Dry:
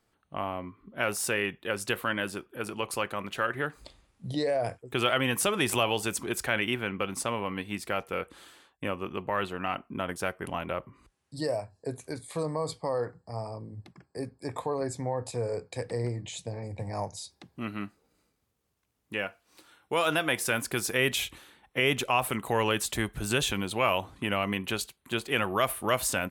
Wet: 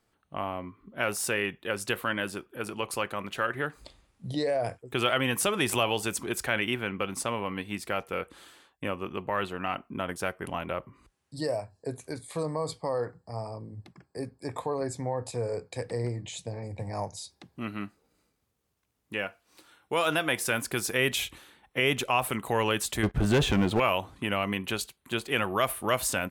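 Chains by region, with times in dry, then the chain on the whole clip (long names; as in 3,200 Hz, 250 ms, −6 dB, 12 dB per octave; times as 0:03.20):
0:23.03–0:23.80: low-pass filter 1,000 Hz 6 dB per octave + leveller curve on the samples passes 3
whole clip: no processing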